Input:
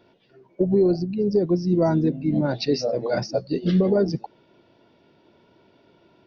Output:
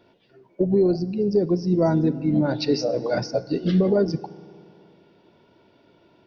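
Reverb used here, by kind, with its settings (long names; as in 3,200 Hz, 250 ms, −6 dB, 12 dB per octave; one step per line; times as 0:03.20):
feedback delay network reverb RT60 2.5 s, low-frequency decay 1×, high-frequency decay 0.7×, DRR 16 dB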